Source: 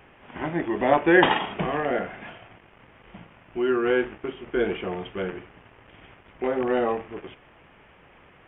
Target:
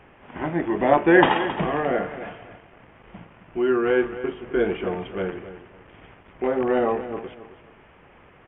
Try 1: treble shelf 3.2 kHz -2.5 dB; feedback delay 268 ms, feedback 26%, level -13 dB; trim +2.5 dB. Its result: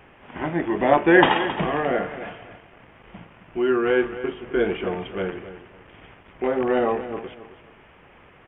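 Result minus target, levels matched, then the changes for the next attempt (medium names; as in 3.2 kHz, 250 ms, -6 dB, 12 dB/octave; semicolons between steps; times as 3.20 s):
4 kHz band +3.0 dB
change: treble shelf 3.2 kHz -9.5 dB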